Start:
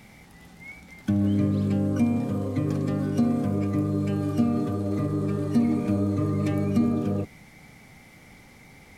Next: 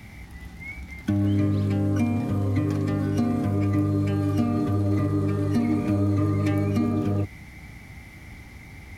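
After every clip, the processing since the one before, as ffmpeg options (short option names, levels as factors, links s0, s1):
-filter_complex "[0:a]equalizer=f=62:t=o:w=1.2:g=14.5,acrossover=split=320[s0][s1];[s0]acompressor=threshold=0.0355:ratio=6[s2];[s2][s1]amix=inputs=2:normalize=0,equalizer=f=100:t=o:w=0.33:g=5,equalizer=f=315:t=o:w=0.33:g=4,equalizer=f=500:t=o:w=0.33:g=-6,equalizer=f=2000:t=o:w=0.33:g=4,equalizer=f=8000:t=o:w=0.33:g=-4,volume=1.33"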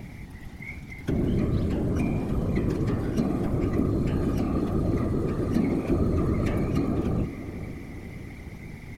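-filter_complex "[0:a]acrossover=split=620[s0][s1];[s0]acompressor=mode=upward:threshold=0.0282:ratio=2.5[s2];[s2][s1]amix=inputs=2:normalize=0,afftfilt=real='hypot(re,im)*cos(2*PI*random(0))':imag='hypot(re,im)*sin(2*PI*random(1))':win_size=512:overlap=0.75,asplit=2[s3][s4];[s4]adelay=495,lowpass=f=2000:p=1,volume=0.266,asplit=2[s5][s6];[s6]adelay=495,lowpass=f=2000:p=1,volume=0.54,asplit=2[s7][s8];[s8]adelay=495,lowpass=f=2000:p=1,volume=0.54,asplit=2[s9][s10];[s10]adelay=495,lowpass=f=2000:p=1,volume=0.54,asplit=2[s11][s12];[s12]adelay=495,lowpass=f=2000:p=1,volume=0.54,asplit=2[s13][s14];[s14]adelay=495,lowpass=f=2000:p=1,volume=0.54[s15];[s3][s5][s7][s9][s11][s13][s15]amix=inputs=7:normalize=0,volume=1.5"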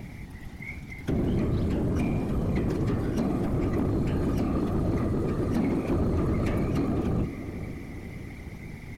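-af "asoftclip=type=hard:threshold=0.0891"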